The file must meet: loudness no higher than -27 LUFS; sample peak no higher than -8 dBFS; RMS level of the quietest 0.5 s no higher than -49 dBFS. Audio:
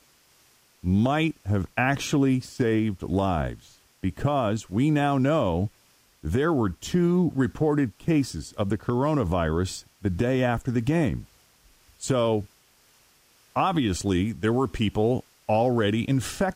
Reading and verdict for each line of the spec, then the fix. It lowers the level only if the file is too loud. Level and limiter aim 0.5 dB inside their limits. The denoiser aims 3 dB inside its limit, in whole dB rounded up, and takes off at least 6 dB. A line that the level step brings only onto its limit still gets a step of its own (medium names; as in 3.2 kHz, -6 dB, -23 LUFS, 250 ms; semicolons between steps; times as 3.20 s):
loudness -25.0 LUFS: fail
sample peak -11.0 dBFS: pass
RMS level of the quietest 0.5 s -61 dBFS: pass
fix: trim -2.5 dB